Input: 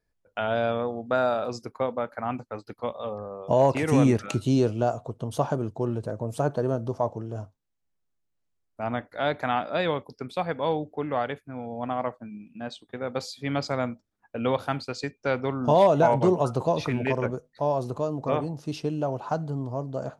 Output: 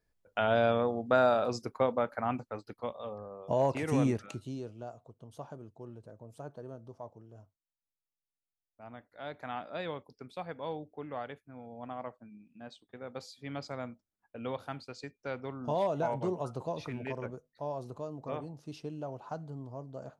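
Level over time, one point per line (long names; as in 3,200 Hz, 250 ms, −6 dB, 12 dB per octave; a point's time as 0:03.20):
0:02.09 −1 dB
0:03.08 −8 dB
0:04.06 −8 dB
0:04.59 −19 dB
0:08.98 −19 dB
0:09.63 −12 dB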